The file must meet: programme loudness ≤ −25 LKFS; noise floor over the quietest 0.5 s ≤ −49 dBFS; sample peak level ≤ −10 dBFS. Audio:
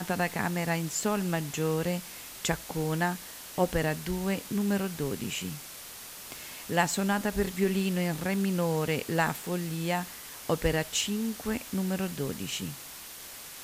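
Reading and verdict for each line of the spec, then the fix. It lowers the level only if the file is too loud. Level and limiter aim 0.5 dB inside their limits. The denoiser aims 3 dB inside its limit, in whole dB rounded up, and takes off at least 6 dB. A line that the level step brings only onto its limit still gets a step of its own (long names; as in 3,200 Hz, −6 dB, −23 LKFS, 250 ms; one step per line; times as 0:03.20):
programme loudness −30.5 LKFS: in spec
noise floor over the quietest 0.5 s −44 dBFS: out of spec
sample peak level −11.5 dBFS: in spec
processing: broadband denoise 8 dB, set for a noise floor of −44 dBFS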